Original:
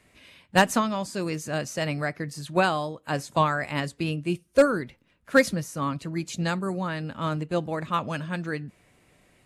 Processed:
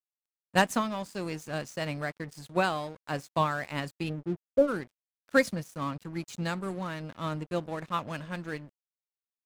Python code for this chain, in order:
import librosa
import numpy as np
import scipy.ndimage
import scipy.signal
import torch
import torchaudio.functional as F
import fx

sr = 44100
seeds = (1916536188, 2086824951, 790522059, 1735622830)

y = fx.cheby2_lowpass(x, sr, hz=4500.0, order=4, stop_db=80, at=(4.08, 4.67), fade=0.02)
y = np.sign(y) * np.maximum(np.abs(y) - 10.0 ** (-41.0 / 20.0), 0.0)
y = F.gain(torch.from_numpy(y), -4.0).numpy()